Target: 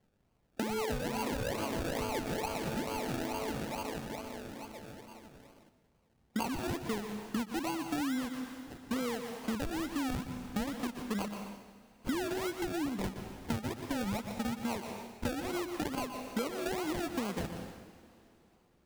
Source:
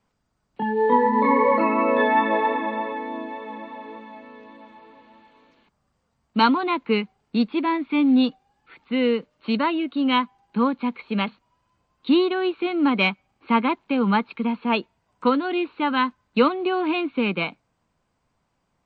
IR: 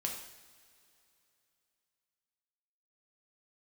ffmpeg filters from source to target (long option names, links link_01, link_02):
-filter_complex "[0:a]acrusher=samples=34:mix=1:aa=0.000001:lfo=1:lforange=20.4:lforate=2.3,asettb=1/sr,asplit=3[link_01][link_02][link_03];[link_01]atrim=end=12.584[link_04];[link_02]atrim=start=12.58:end=13.04,asetpts=PTS-STARTPTS,afade=type=in:duration=0.004:curve=qsin,afade=type=out:start_time=0.456:duration=0.004:curve=qsin,acrossover=split=320[link_05][link_06];[link_06]acompressor=threshold=-30dB:ratio=3[link_07];[link_05][link_07]amix=inputs=2:normalize=0[link_08];[link_03]atrim=start=13.036[link_09];[link_04][link_08]acrossfade=duration=0.004:curve1=hsin:curve2=qsin[link_10];[link_10][link_09]acrossfade=duration=0.004:curve1=qsin:curve2=hsin,asplit=2[link_11][link_12];[1:a]atrim=start_sample=2205,adelay=119[link_13];[link_12][link_13]afir=irnorm=-1:irlink=0,volume=-12.5dB[link_14];[link_11][link_14]amix=inputs=2:normalize=0,acompressor=threshold=-32dB:ratio=12"